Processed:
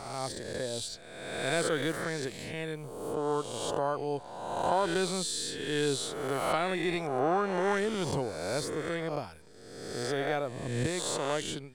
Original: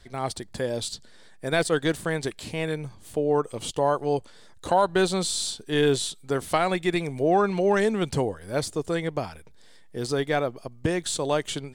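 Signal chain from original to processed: spectral swells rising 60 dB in 1.33 s; gain -9 dB

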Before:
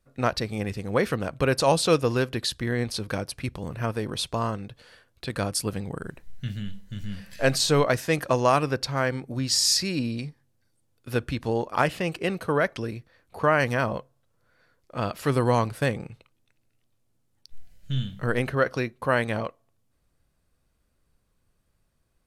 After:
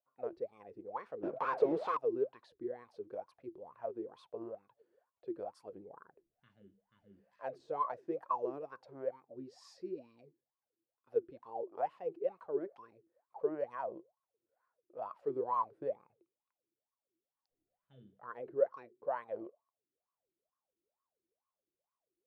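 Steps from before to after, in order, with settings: 1.23–1.97 overdrive pedal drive 36 dB, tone 2100 Hz, clips at -7 dBFS; wah 2.2 Hz 330–1100 Hz, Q 18; gain +1.5 dB

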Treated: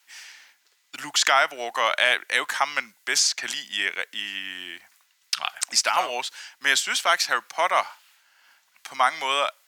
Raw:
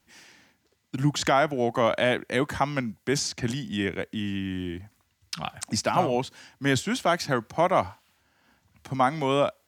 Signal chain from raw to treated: HPF 1300 Hz 12 dB/oct; gain +9 dB

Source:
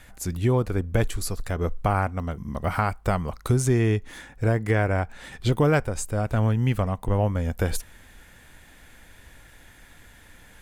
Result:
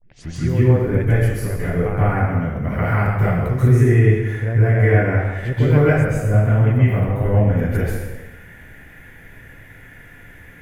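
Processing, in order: tape start at the beginning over 0.31 s; graphic EQ 125/500/1000/2000/4000/8000 Hz +7/+4/-7/+10/-12/-11 dB; in parallel at -2 dB: compressor, threshold -25 dBFS, peak gain reduction 13.5 dB; on the sum: plate-style reverb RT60 1.1 s, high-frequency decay 0.85×, pre-delay 0.12 s, DRR -10 dB; gain -9 dB

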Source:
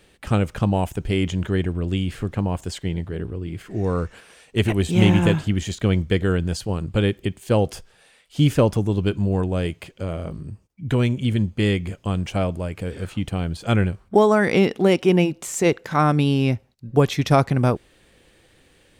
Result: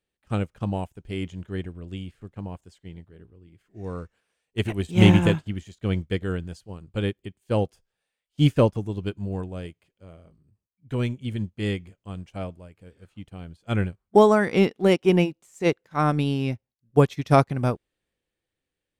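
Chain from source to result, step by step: transient shaper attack -2 dB, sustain +3 dB; upward expander 2.5:1, over -34 dBFS; gain +2.5 dB

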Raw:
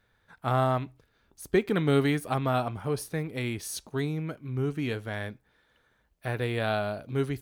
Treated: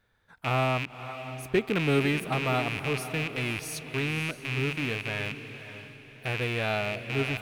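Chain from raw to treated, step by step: rattling part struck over -40 dBFS, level -19 dBFS; diffused feedback echo 0.546 s, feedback 40%, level -11 dB; gain -1.5 dB

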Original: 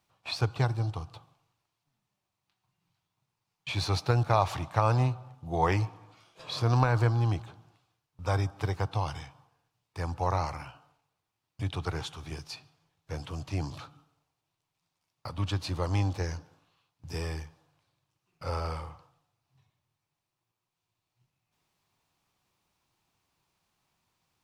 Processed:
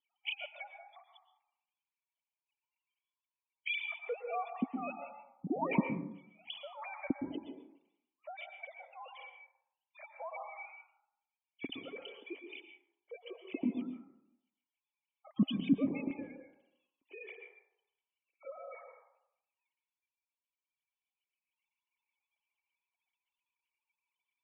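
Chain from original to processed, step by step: sine-wave speech; notch 1500 Hz, Q 12; spectral gate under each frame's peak -15 dB strong; 15.97–18.45 low shelf 460 Hz -12 dB; vocal tract filter i; plate-style reverb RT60 0.73 s, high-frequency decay 0.3×, pre-delay 0.105 s, DRR 5 dB; gain +9.5 dB

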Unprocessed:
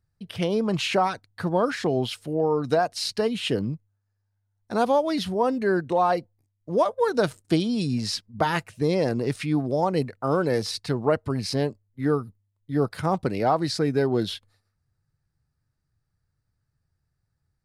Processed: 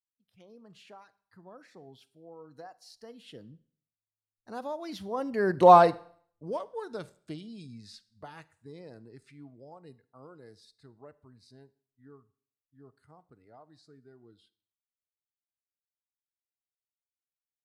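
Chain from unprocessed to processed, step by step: Doppler pass-by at 5.71, 17 m/s, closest 1.3 m; spectral noise reduction 10 dB; on a send: reverb RT60 0.55 s, pre-delay 35 ms, DRR 18.5 dB; on the sum: gain +7.5 dB

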